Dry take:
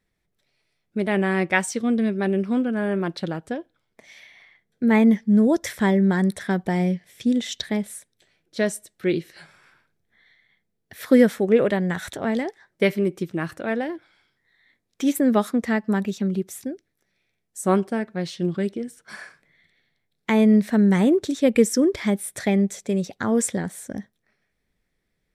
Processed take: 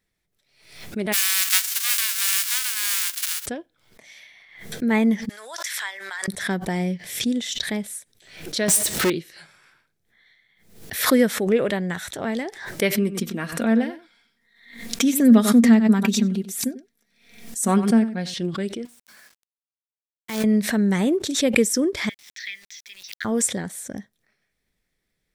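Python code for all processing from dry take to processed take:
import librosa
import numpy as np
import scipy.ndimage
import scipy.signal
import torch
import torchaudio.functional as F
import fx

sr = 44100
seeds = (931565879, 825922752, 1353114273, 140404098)

y = fx.envelope_flatten(x, sr, power=0.1, at=(1.12, 3.45), fade=0.02)
y = fx.highpass(y, sr, hz=1300.0, slope=24, at=(1.12, 3.45), fade=0.02)
y = fx.chain(y, sr, fx.bessel_highpass(hz=1500.0, order=4),
    fx.high_shelf(hz=9900.0, db=-8.5),
    fx.pre_swell(db_per_s=34.0), at=(5.29, 6.28))
y = fx.chain(y, sr, fx.highpass(hz=46.0, slope=12),
    fx.power_curve(exponent=0.35), at=(8.68, 9.1))
y = fx.chain(y, sr, fx.peak_eq(hz=230.0, db=12.0, octaves=0.21),
    fx.comb(ms=4.3, depth=0.5),
    fx.echo_single(ms=95, db=-14.5), at=(12.97, 18.34))
y = fx.chain(y, sr, fx.level_steps(step_db=11),
    fx.comb_fb(f0_hz=120.0, decay_s=1.3, harmonics='all', damping=0.0, mix_pct=60),
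    fx.quant_companded(bits=4), at=(18.85, 20.44))
y = fx.chain(y, sr, fx.ellip_bandpass(low_hz=1800.0, high_hz=5600.0, order=3, stop_db=40),
    fx.sample_gate(floor_db=-53.0), at=(22.09, 23.25))
y = fx.high_shelf(y, sr, hz=2400.0, db=7.0)
y = fx.pre_swell(y, sr, db_per_s=87.0)
y = F.gain(torch.from_numpy(y), -3.0).numpy()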